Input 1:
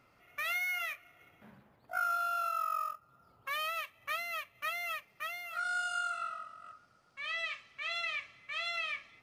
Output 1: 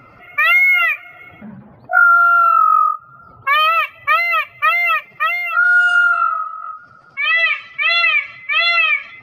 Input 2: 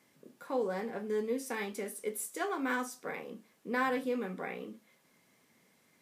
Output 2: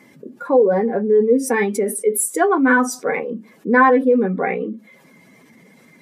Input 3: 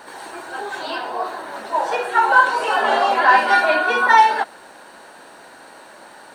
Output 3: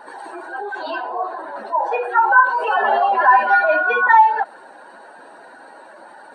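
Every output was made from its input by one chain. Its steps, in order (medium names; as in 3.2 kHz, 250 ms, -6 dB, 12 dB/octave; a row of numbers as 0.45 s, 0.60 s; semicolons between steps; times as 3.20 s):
spectral contrast enhancement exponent 1.7; peak normalisation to -1.5 dBFS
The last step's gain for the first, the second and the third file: +22.5 dB, +19.0 dB, +1.0 dB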